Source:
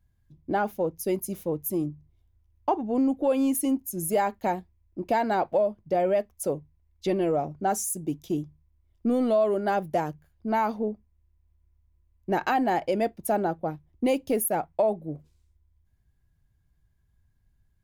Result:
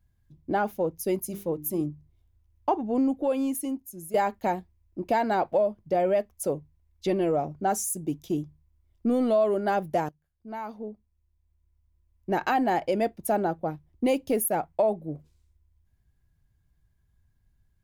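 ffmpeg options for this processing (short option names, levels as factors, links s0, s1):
-filter_complex "[0:a]asettb=1/sr,asplit=3[s0][s1][s2];[s0]atrim=end=1.274[s3];[s1]atrim=start=1.27:end=1.81,asetpts=PTS-STARTPTS,afade=t=in:d=0.004:c=qsin,afade=t=out:st=0.536:d=0.004:c=qsin,bandreject=f=50:t=h:w=6,bandreject=f=100:t=h:w=6,bandreject=f=150:t=h:w=6,bandreject=f=200:t=h:w=6,bandreject=f=250:t=h:w=6,bandreject=f=300:t=h:w=6,bandreject=f=350:t=h:w=6,bandreject=f=400:t=h:w=6[s4];[s2]atrim=start=1.806[s5];[s3][s4]acrossfade=d=0.004:c1=hsin:c2=qsin[s6];[s6][s5]acrossfade=d=0.004:c1=qsin:c2=hsin,asplit=3[s7][s8][s9];[s7]atrim=end=4.14,asetpts=PTS-STARTPTS,afade=t=out:st=2.94:d=1.2:silence=0.223872[s10];[s8]atrim=start=4.14:end=10.09,asetpts=PTS-STARTPTS,afade=t=in:d=0.004:c=hsin:silence=0.223872,afade=t=out:st=5.946:d=0.004:c=hsin:silence=0.1[s11];[s9]atrim=start=10.09,asetpts=PTS-STARTPTS,afade=t=in:d=2.46:silence=0.1[s12];[s10][s11][s12]concat=n=3:v=0:a=1"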